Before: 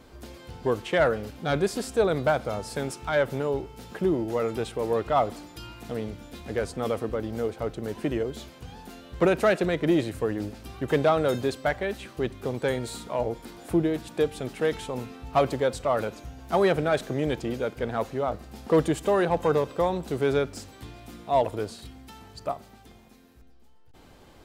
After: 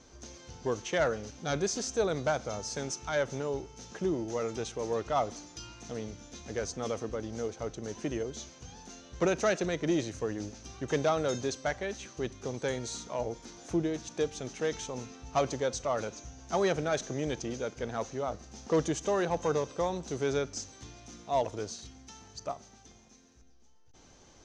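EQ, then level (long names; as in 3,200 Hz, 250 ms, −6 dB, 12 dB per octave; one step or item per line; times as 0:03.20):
transistor ladder low-pass 6,400 Hz, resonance 85%
+6.5 dB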